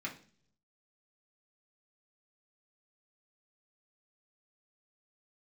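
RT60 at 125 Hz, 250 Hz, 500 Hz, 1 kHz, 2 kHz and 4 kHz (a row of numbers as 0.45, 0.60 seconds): 1.0, 0.75, 0.55, 0.40, 0.45, 0.55 seconds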